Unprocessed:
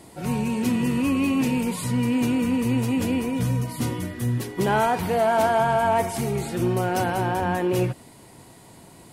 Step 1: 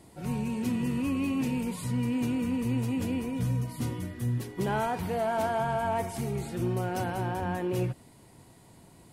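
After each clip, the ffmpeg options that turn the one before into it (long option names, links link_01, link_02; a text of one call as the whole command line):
ffmpeg -i in.wav -af "lowshelf=frequency=180:gain=6.5,volume=-9dB" out.wav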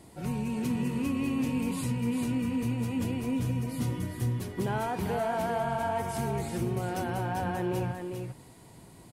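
ffmpeg -i in.wav -filter_complex "[0:a]acompressor=threshold=-29dB:ratio=6,asplit=2[link_01][link_02];[link_02]aecho=0:1:399:0.531[link_03];[link_01][link_03]amix=inputs=2:normalize=0,volume=1.5dB" out.wav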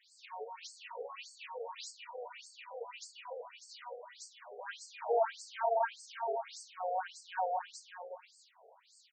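ffmpeg -i in.wav -filter_complex "[0:a]acrossover=split=240|450|2100[link_01][link_02][link_03][link_04];[link_03]adynamicsmooth=sensitivity=6:basefreq=1500[link_05];[link_01][link_02][link_05][link_04]amix=inputs=4:normalize=0,afftfilt=real='re*between(b*sr/1024,560*pow(6200/560,0.5+0.5*sin(2*PI*1.7*pts/sr))/1.41,560*pow(6200/560,0.5+0.5*sin(2*PI*1.7*pts/sr))*1.41)':imag='im*between(b*sr/1024,560*pow(6200/560,0.5+0.5*sin(2*PI*1.7*pts/sr))/1.41,560*pow(6200/560,0.5+0.5*sin(2*PI*1.7*pts/sr))*1.41)':win_size=1024:overlap=0.75,volume=3.5dB" out.wav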